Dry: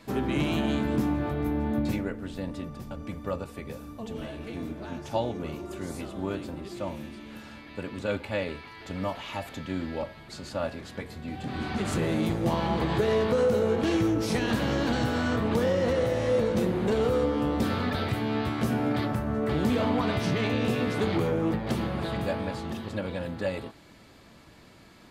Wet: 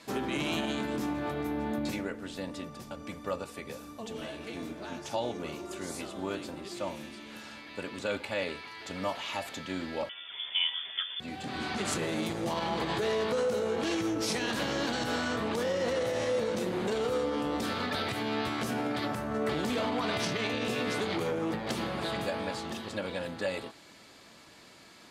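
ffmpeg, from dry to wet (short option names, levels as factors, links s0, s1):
-filter_complex "[0:a]asettb=1/sr,asplit=3[s0][s1][s2];[s0]atrim=end=10.094[s3];[s1]atrim=start=10.09:end=11.2,asetpts=PTS-STARTPTS,afade=t=in:d=0.004:c=qsin,afade=t=out:st=1.106:d=0.004:c=qsin,lowpass=f=3100:t=q:w=0.5098,lowpass=f=3100:t=q:w=0.6013,lowpass=f=3100:t=q:w=0.9,lowpass=f=3100:t=q:w=2.563,afreqshift=-3600[s4];[s2]atrim=start=11.196[s5];[s3][s4]acrossfade=d=0.004:c1=hsin:c2=qsin[s6];[s6][s5]acrossfade=d=0.004:c1=qsin:c2=hsin,asplit=3[s7][s8][s9];[s7]atrim=end=19.302[s10];[s8]atrim=start=19.298:end=20.372,asetpts=PTS-STARTPTS,volume=2[s11];[s9]atrim=start=20.368[s12];[s10][s11]acrossfade=d=0.004:c1=hsin:c2=hsin[s13];[s13][s12]acrossfade=d=0.004:c1=hsin:c2=hsin,alimiter=limit=0.0944:level=0:latency=1:release=55,lowpass=7000,aemphasis=mode=production:type=bsi"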